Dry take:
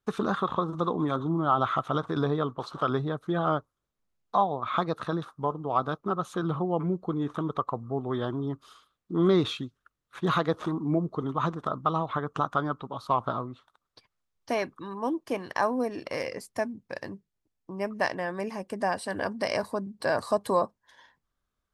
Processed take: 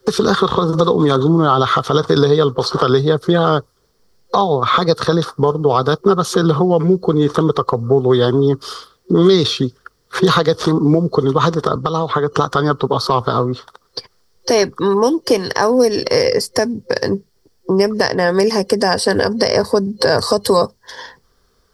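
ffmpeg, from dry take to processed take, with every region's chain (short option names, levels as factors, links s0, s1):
-filter_complex "[0:a]asettb=1/sr,asplit=3[s0][s1][s2];[s0]atrim=end=11.754[s3];[s1]atrim=start=11.75:end=12.32,asetpts=PTS-STARTPTS,afade=t=in:d=0.004:c=qsin,afade=t=out:st=0.566:d=0.004:c=qsin,lowpass=9900,acrossover=split=120|3200[s4][s5][s6];[s4]acompressor=threshold=0.00178:ratio=4[s7];[s5]acompressor=threshold=0.0126:ratio=4[s8];[s6]acompressor=threshold=0.00178:ratio=4[s9];[s7][s8][s9]amix=inputs=3:normalize=0[s10];[s2]atrim=start=12.316[s11];[s3][s10]acrossfade=d=0.004:c1=hsin:c2=qsin[s12];[s12][s11]acrossfade=d=0.004:c1=qsin:c2=hsin,superequalizer=7b=2.82:12b=0.562:14b=2.82,acrossover=split=140|2500[s13][s14][s15];[s13]acompressor=threshold=0.00562:ratio=4[s16];[s14]acompressor=threshold=0.0178:ratio=4[s17];[s15]acompressor=threshold=0.00794:ratio=4[s18];[s16][s17][s18]amix=inputs=3:normalize=0,alimiter=level_in=15:limit=0.891:release=50:level=0:latency=1,volume=0.891"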